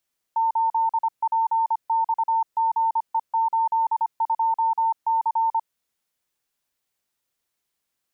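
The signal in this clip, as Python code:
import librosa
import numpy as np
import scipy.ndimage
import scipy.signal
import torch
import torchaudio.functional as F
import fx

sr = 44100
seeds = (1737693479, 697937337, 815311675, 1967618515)

y = fx.morse(sr, text='8PXGE82C', wpm=25, hz=903.0, level_db=-18.0)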